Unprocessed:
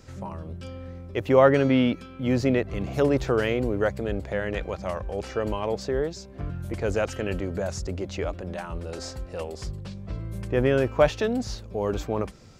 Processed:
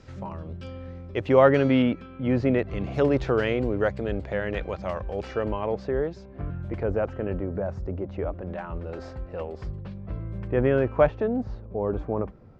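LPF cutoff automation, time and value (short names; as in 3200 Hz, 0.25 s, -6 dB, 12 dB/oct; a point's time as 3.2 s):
4400 Hz
from 1.82 s 2400 Hz
from 2.59 s 3900 Hz
from 5.44 s 2200 Hz
from 6.83 s 1200 Hz
from 8.41 s 2000 Hz
from 11.07 s 1100 Hz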